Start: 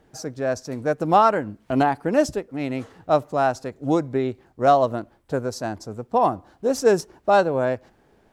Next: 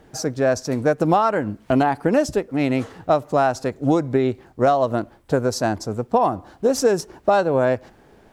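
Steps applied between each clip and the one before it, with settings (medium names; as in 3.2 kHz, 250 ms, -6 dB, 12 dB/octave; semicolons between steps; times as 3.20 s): compression 10:1, threshold -21 dBFS, peak gain reduction 11 dB; trim +7.5 dB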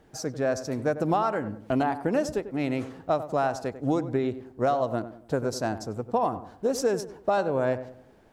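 filtered feedback delay 95 ms, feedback 42%, low-pass 1.4 kHz, level -11.5 dB; trim -7.5 dB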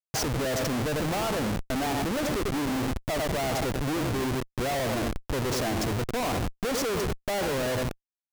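block-companded coder 3-bit; Schmitt trigger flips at -37.5 dBFS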